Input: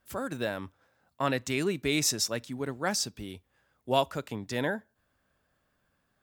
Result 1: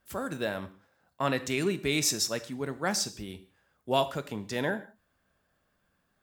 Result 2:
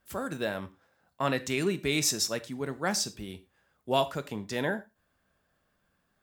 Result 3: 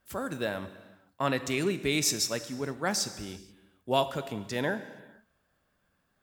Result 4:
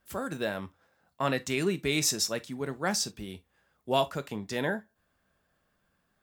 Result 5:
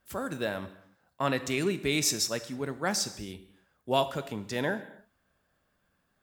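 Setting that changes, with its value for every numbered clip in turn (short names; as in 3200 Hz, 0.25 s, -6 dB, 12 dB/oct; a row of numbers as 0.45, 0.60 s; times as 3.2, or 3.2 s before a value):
non-linear reverb, gate: 210, 140, 500, 90, 320 ms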